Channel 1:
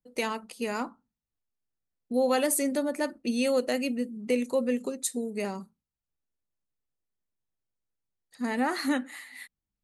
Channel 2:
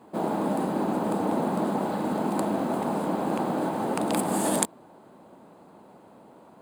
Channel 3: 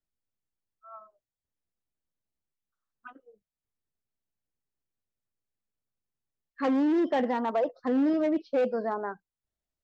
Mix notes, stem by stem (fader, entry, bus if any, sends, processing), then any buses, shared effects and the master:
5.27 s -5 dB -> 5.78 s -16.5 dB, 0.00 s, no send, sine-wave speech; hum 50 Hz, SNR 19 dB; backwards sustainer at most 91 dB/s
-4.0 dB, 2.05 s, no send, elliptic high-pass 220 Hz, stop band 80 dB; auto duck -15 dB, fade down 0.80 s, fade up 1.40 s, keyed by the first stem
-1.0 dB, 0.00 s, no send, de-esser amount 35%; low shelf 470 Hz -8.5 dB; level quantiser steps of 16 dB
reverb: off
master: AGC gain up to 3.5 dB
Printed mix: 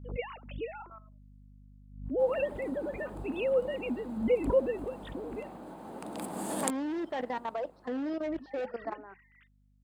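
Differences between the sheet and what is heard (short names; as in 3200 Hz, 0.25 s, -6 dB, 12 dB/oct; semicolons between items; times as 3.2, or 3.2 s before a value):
stem 2: missing elliptic high-pass 220 Hz, stop band 80 dB; master: missing AGC gain up to 3.5 dB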